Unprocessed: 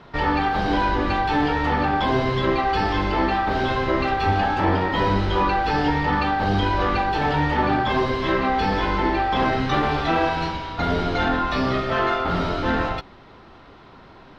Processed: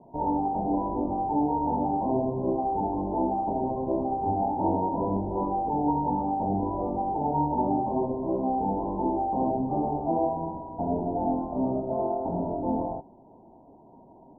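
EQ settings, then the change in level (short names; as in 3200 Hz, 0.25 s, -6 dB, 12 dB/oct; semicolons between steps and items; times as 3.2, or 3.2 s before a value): rippled Chebyshev low-pass 960 Hz, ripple 6 dB; low shelf 120 Hz -11.5 dB; 0.0 dB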